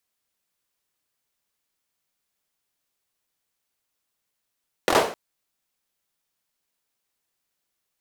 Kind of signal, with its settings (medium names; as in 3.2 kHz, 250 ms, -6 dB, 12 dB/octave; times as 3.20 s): hand clap length 0.26 s, apart 23 ms, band 540 Hz, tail 0.43 s